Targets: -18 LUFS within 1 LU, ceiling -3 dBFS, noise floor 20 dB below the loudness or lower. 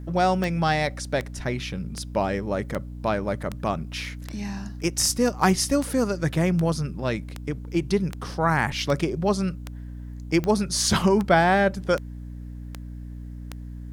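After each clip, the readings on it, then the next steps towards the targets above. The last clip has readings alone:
clicks 18; hum 60 Hz; harmonics up to 300 Hz; hum level -34 dBFS; loudness -24.5 LUFS; peak -5.5 dBFS; loudness target -18.0 LUFS
-> de-click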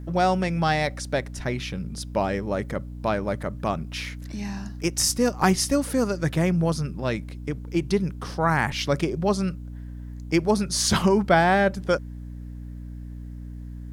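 clicks 0; hum 60 Hz; harmonics up to 300 Hz; hum level -34 dBFS
-> notches 60/120/180/240/300 Hz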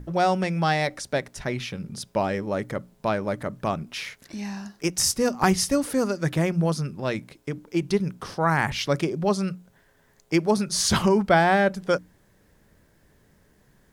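hum none; loudness -25.0 LUFS; peak -5.5 dBFS; loudness target -18.0 LUFS
-> gain +7 dB; limiter -3 dBFS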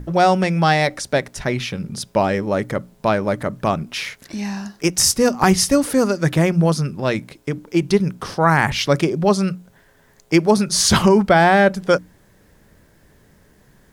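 loudness -18.0 LUFS; peak -3.0 dBFS; noise floor -54 dBFS

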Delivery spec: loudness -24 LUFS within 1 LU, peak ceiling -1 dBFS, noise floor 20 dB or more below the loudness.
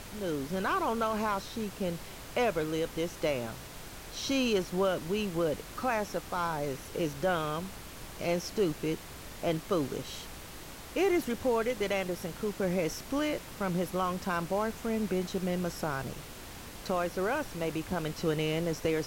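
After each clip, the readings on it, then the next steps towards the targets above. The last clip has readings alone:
noise floor -46 dBFS; noise floor target -53 dBFS; loudness -32.5 LUFS; peak -18.0 dBFS; loudness target -24.0 LUFS
-> noise print and reduce 7 dB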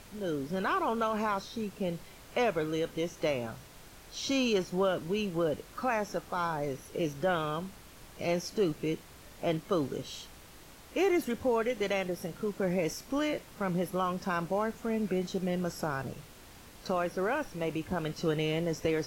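noise floor -52 dBFS; noise floor target -53 dBFS
-> noise print and reduce 6 dB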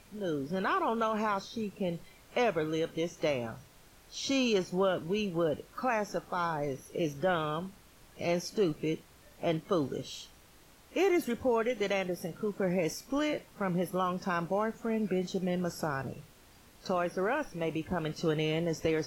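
noise floor -58 dBFS; loudness -32.5 LUFS; peak -18.5 dBFS; loudness target -24.0 LUFS
-> gain +8.5 dB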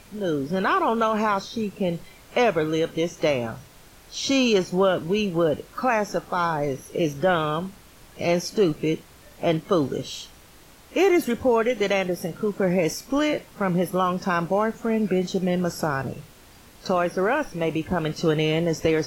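loudness -24.0 LUFS; peak -10.0 dBFS; noise floor -50 dBFS

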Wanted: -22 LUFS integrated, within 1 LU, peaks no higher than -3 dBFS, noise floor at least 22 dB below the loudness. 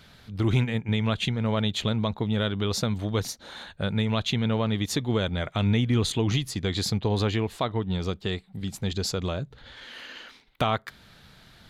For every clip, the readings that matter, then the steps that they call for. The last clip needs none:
loudness -27.0 LUFS; peak -12.5 dBFS; loudness target -22.0 LUFS
-> gain +5 dB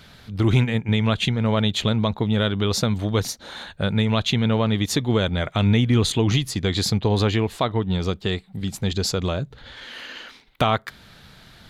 loudness -22.0 LUFS; peak -7.5 dBFS; noise floor -50 dBFS

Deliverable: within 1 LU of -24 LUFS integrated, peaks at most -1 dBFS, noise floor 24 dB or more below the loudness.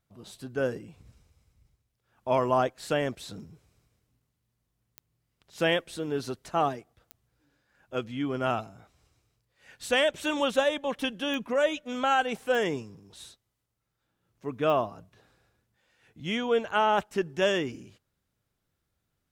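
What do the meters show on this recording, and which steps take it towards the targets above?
clicks 5; loudness -28.5 LUFS; peak -11.0 dBFS; loudness target -24.0 LUFS
-> de-click; gain +4.5 dB

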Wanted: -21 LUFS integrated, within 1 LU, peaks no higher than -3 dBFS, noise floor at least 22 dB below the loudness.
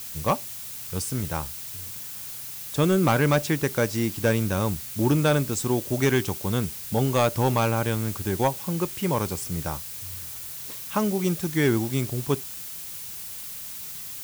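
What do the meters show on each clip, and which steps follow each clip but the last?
clipped 0.4%; flat tops at -14.0 dBFS; noise floor -37 dBFS; noise floor target -48 dBFS; loudness -26.0 LUFS; peak -14.0 dBFS; loudness target -21.0 LUFS
-> clip repair -14 dBFS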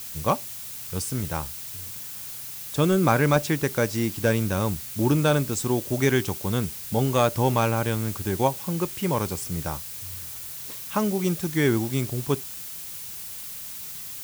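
clipped 0.0%; noise floor -37 dBFS; noise floor target -48 dBFS
-> denoiser 11 dB, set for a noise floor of -37 dBFS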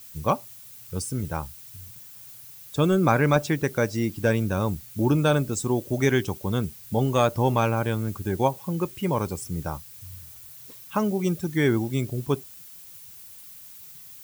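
noise floor -45 dBFS; noise floor target -48 dBFS
-> denoiser 6 dB, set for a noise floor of -45 dBFS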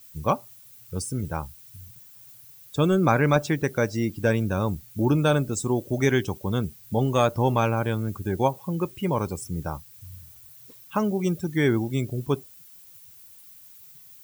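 noise floor -50 dBFS; loudness -25.5 LUFS; peak -6.5 dBFS; loudness target -21.0 LUFS
-> gain +4.5 dB; limiter -3 dBFS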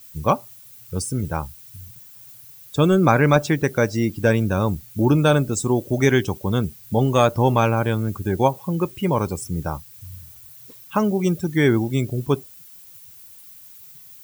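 loudness -21.0 LUFS; peak -3.0 dBFS; noise floor -45 dBFS

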